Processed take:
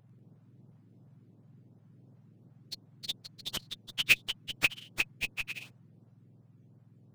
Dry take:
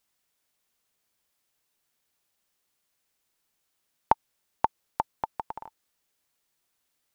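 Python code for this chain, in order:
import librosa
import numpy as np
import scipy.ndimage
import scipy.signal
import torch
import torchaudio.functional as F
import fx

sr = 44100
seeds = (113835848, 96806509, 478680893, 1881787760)

p1 = fx.octave_mirror(x, sr, pivot_hz=1500.0)
p2 = fx.schmitt(p1, sr, flips_db=-31.5)
p3 = p1 + F.gain(torch.from_numpy(p2), -4.0).numpy()
p4 = fx.echo_pitch(p3, sr, ms=95, semitones=3, count=3, db_per_echo=-6.0)
p5 = fx.filter_lfo_notch(p4, sr, shape='saw_up', hz=2.8, low_hz=240.0, high_hz=3100.0, q=1.0)
y = F.gain(torch.from_numpy(p5), 6.0).numpy()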